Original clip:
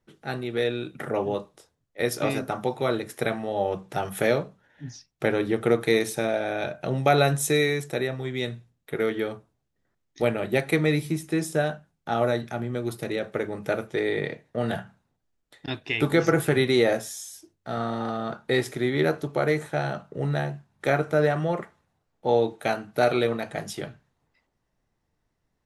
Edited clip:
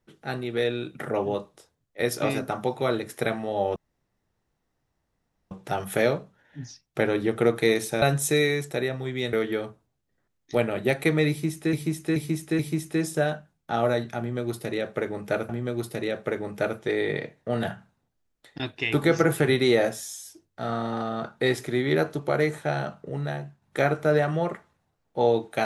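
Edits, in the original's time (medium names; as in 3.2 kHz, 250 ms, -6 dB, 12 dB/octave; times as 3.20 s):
3.76 s: insert room tone 1.75 s
6.27–7.21 s: delete
8.52–9.00 s: delete
10.97–11.40 s: loop, 4 plays
12.57–13.87 s: loop, 2 plays
20.17–20.70 s: gain -4 dB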